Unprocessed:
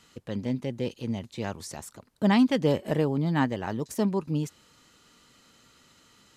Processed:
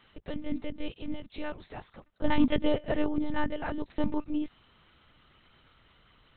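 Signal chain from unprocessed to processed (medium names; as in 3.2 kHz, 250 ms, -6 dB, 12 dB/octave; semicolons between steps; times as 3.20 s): Bessel high-pass 160 Hz, order 8; monotone LPC vocoder at 8 kHz 300 Hz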